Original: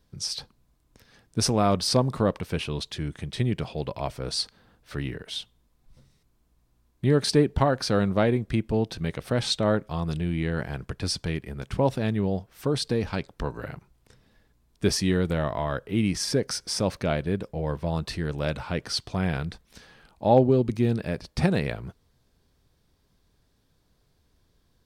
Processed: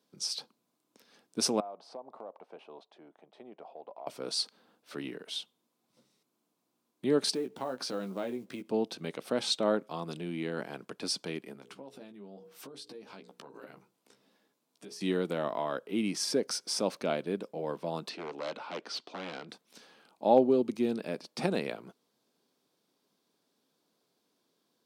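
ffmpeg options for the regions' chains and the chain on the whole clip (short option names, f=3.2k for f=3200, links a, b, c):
-filter_complex "[0:a]asettb=1/sr,asplit=3[a][b][c];[a]atrim=end=1.604[d];[b]atrim=start=1.6:end=4.07,asetpts=PTS-STARTPTS,afade=t=in:d=0.004:c=qsin,afade=t=out:st=2.466:d=0.004:c=qsin,bandpass=f=730:t=q:w=3.1,acompressor=threshold=-37dB:ratio=4:attack=3.2:release=140:knee=1:detection=peak[e];[c]atrim=start=4.066[f];[d][e]acrossfade=d=0.004:c1=hsin:c2=qsin[g];[g][f]acrossfade=d=0.004:c1=qsin:c2=hsin,asettb=1/sr,asplit=3[h][i][j];[h]atrim=end=7.344[k];[i]atrim=start=7.34:end=8.69,asetpts=PTS-STARTPTS,afade=t=in:d=0.004:c=qsin,afade=t=out:st=1.346:d=0.004:c=qsin,acrusher=bits=8:mode=log:mix=0:aa=0.000001,asplit=2[l][m];[m]adelay=16,volume=-6dB[n];[l][n]amix=inputs=2:normalize=0,atrim=end_sample=59535,acompressor=threshold=-31dB:ratio=2.5:attack=3.2:release=140:knee=1:detection=peak[o];[j]atrim=start=8.686[p];[k][o]acrossfade=d=0.004:c1=hsin:c2=qsin[q];[q][p]acrossfade=d=0.004:c1=qsin:c2=hsin,asettb=1/sr,asplit=3[r][s][t];[r]atrim=end=11.534[u];[s]atrim=start=11.53:end=15.01,asetpts=PTS-STARTPTS,afade=t=in:d=0.004:c=qsin,afade=t=out:st=3.476:d=0.004:c=qsin,bandreject=f=60:t=h:w=6,bandreject=f=120:t=h:w=6,bandreject=f=180:t=h:w=6,bandreject=f=240:t=h:w=6,bandreject=f=300:t=h:w=6,bandreject=f=360:t=h:w=6,bandreject=f=420:t=h:w=6,bandreject=f=480:t=h:w=6,acompressor=threshold=-38dB:ratio=20:attack=3.2:release=140:knee=1:detection=peak,asplit=2[v][w];[w]adelay=15,volume=-7dB[x];[v][x]amix=inputs=2:normalize=0,atrim=end_sample=153468[y];[t]atrim=start=15.006[z];[u][y]acrossfade=d=0.004:c1=hsin:c2=qsin[aa];[aa][z]acrossfade=d=0.004:c1=qsin:c2=hsin,asettb=1/sr,asplit=3[ab][ac][ad];[ab]atrim=end=18.094[ae];[ac]atrim=start=18.09:end=19.49,asetpts=PTS-STARTPTS,afade=t=in:d=0.004:c=qsin,afade=t=out:st=1.396:d=0.004:c=qsin,aeval=exprs='0.0631*(abs(mod(val(0)/0.0631+3,4)-2)-1)':c=same,highpass=250,lowpass=4.5k[af];[ad]atrim=start=19.486[ag];[ae][af]acrossfade=d=0.004:c1=hsin:c2=qsin[ah];[ah][ag]acrossfade=d=0.004:c1=qsin:c2=hsin,highpass=f=220:w=0.5412,highpass=f=220:w=1.3066,equalizer=f=1.8k:t=o:w=0.46:g=-6,volume=-3.5dB"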